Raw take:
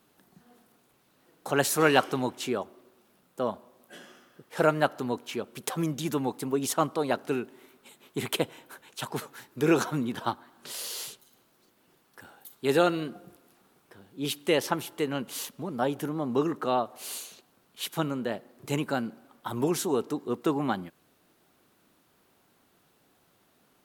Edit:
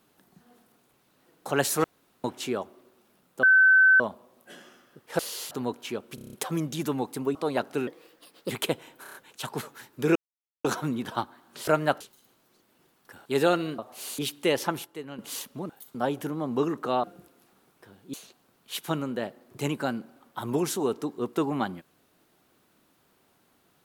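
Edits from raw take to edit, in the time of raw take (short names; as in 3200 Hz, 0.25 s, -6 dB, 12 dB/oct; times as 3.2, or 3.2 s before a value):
1.84–2.24 room tone
3.43 add tone 1530 Hz -14 dBFS 0.57 s
4.62–4.95 swap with 10.77–11.09
5.59 stutter 0.03 s, 7 plays
6.61–6.89 cut
7.41–8.21 speed 126%
8.73 stutter 0.03 s, 5 plays
9.74 insert silence 0.49 s
12.34–12.59 move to 15.73
13.12–14.22 swap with 16.82–17.22
14.88–15.22 gain -9.5 dB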